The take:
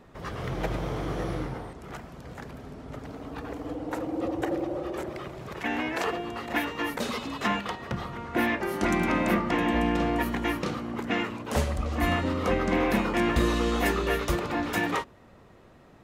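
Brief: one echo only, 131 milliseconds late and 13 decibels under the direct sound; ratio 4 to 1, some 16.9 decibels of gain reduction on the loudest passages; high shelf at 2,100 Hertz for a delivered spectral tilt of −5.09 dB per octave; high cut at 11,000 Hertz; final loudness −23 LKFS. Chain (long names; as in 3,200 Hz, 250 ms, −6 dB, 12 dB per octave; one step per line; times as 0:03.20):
low-pass filter 11,000 Hz
high-shelf EQ 2,100 Hz −4 dB
downward compressor 4 to 1, threshold −42 dBFS
single-tap delay 131 ms −13 dB
level +20 dB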